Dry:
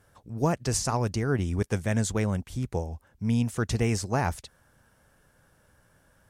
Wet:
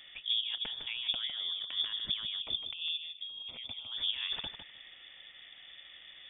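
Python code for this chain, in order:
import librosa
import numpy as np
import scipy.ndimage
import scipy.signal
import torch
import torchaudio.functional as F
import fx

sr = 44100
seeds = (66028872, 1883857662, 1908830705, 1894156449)

p1 = fx.over_compress(x, sr, threshold_db=-37.0, ratio=-1.0)
p2 = fx.fixed_phaser(p1, sr, hz=490.0, stages=6, at=(2.39, 3.92))
p3 = p2 + fx.echo_feedback(p2, sr, ms=155, feedback_pct=16, wet_db=-8.5, dry=0)
y = fx.freq_invert(p3, sr, carrier_hz=3500)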